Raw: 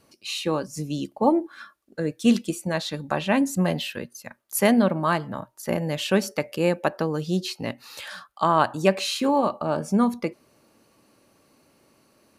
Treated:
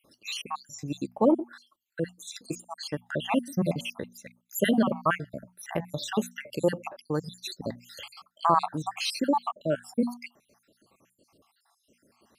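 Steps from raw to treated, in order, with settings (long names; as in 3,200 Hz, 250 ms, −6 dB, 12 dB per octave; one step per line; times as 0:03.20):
time-frequency cells dropped at random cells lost 69%
mains-hum notches 60/120/180/240 Hz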